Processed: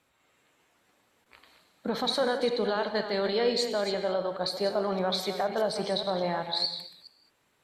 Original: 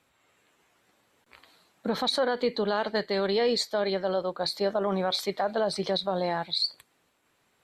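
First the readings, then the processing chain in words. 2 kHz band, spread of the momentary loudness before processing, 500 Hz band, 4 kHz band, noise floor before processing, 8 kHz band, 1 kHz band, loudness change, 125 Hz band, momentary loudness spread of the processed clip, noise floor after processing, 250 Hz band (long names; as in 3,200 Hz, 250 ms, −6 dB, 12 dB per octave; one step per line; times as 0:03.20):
−1.0 dB, 4 LU, −1.0 dB, −1.0 dB, −70 dBFS, −1.0 dB, −1.0 dB, −1.0 dB, −1.5 dB, 4 LU, −71 dBFS, −1.5 dB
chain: delay that plays each chunk backwards 208 ms, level −10 dB
reverb whose tail is shaped and stops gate 240 ms flat, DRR 8 dB
level −2 dB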